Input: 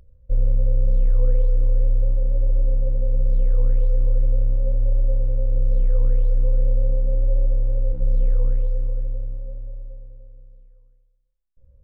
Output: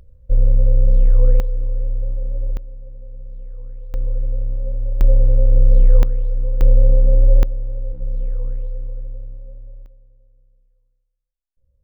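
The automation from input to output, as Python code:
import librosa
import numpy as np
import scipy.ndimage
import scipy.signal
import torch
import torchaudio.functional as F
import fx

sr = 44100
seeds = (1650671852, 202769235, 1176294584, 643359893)

y = fx.gain(x, sr, db=fx.steps((0.0, 5.0), (1.4, -3.0), (2.57, -15.0), (3.94, -2.5), (5.01, 7.5), (6.03, -1.5), (6.61, 7.5), (7.43, -4.0), (9.86, -10.5)))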